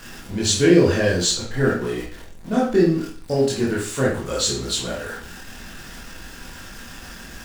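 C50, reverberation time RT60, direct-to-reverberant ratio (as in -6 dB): 4.0 dB, 0.45 s, -6.5 dB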